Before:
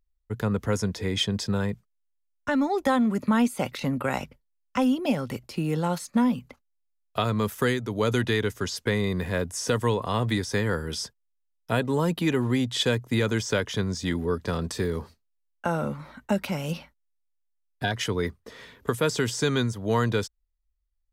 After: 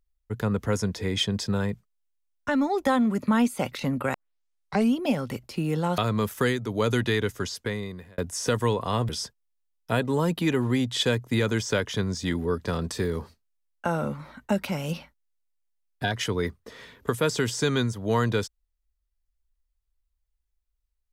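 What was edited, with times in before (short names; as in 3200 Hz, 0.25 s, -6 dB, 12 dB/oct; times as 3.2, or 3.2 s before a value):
4.14 tape start 0.80 s
5.98–7.19 cut
8.55–9.39 fade out
10.3–10.89 cut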